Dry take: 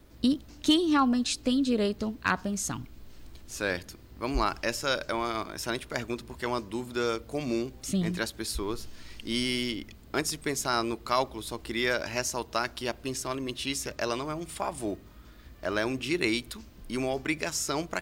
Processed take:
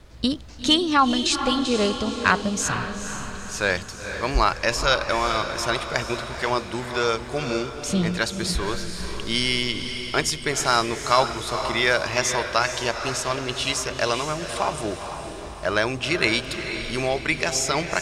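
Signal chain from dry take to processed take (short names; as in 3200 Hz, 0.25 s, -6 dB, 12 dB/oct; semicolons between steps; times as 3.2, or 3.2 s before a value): LPF 8200 Hz 12 dB/oct; bell 280 Hz -9 dB 0.92 oct; diffused feedback echo 0.474 s, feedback 50%, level -8 dB; gain +8.5 dB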